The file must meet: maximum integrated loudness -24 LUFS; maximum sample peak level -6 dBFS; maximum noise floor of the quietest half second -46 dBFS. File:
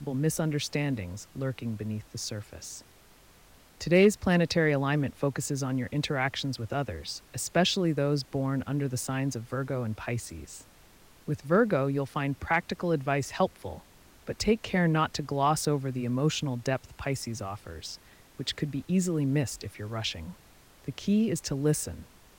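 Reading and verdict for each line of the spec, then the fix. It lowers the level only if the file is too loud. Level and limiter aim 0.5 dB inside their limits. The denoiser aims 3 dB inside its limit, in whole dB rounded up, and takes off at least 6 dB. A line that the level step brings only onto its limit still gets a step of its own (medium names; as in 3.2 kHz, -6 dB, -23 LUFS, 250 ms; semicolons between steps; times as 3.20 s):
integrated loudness -29.5 LUFS: pass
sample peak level -12.0 dBFS: pass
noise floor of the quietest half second -57 dBFS: pass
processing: none needed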